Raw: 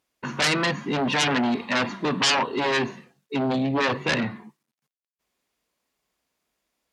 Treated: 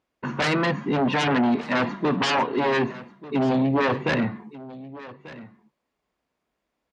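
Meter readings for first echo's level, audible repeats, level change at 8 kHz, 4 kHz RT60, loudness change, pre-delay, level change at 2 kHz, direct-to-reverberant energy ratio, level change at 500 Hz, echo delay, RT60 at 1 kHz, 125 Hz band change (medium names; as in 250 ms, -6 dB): -18.0 dB, 1, -10.0 dB, no reverb, +0.5 dB, no reverb, -1.5 dB, no reverb, +2.5 dB, 1190 ms, no reverb, +3.0 dB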